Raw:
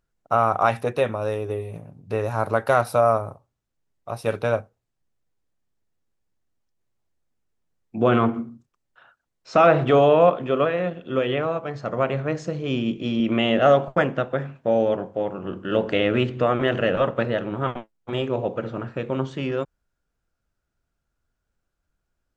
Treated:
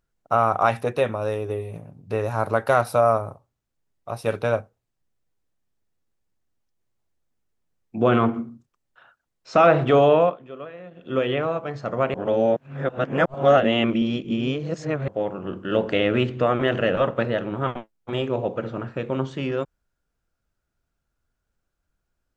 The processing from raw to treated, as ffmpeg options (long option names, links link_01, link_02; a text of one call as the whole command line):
ffmpeg -i in.wav -filter_complex "[0:a]asplit=5[link_01][link_02][link_03][link_04][link_05];[link_01]atrim=end=10.38,asetpts=PTS-STARTPTS,afade=type=out:start_time=10.16:duration=0.22:silence=0.158489[link_06];[link_02]atrim=start=10.38:end=10.91,asetpts=PTS-STARTPTS,volume=-16dB[link_07];[link_03]atrim=start=10.91:end=12.142,asetpts=PTS-STARTPTS,afade=type=in:duration=0.22:silence=0.158489[link_08];[link_04]atrim=start=12.138:end=15.082,asetpts=PTS-STARTPTS,areverse[link_09];[link_05]atrim=start=15.078[link_10];[link_06][link_07][link_08]concat=n=3:v=0:a=1[link_11];[link_11][link_09]acrossfade=duration=0.004:curve1=hsin:curve2=hsin[link_12];[link_12][link_10]acrossfade=duration=0.004:curve1=hsin:curve2=hsin" out.wav